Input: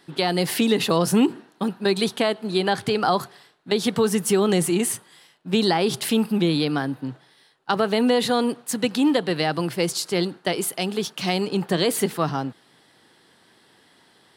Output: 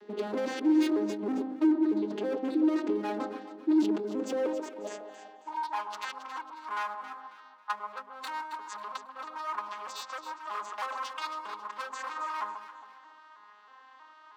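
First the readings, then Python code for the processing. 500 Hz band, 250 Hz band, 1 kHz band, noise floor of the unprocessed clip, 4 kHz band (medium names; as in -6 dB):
-12.5 dB, -7.5 dB, -7.0 dB, -58 dBFS, -19.0 dB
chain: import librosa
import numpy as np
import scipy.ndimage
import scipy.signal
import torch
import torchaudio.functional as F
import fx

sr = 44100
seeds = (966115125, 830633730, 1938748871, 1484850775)

p1 = fx.vocoder_arp(x, sr, chord='major triad', root=56, every_ms=318)
p2 = fx.high_shelf(p1, sr, hz=2600.0, db=-8.5)
p3 = fx.over_compress(p2, sr, threshold_db=-32.0, ratio=-1.0)
p4 = np.clip(10.0 ** (33.5 / 20.0) * p3, -1.0, 1.0) / 10.0 ** (33.5 / 20.0)
p5 = fx.filter_sweep_highpass(p4, sr, from_hz=330.0, to_hz=1100.0, start_s=4.13, end_s=5.81, q=6.1)
y = p5 + fx.echo_alternate(p5, sr, ms=136, hz=1200.0, feedback_pct=57, wet_db=-6.0, dry=0)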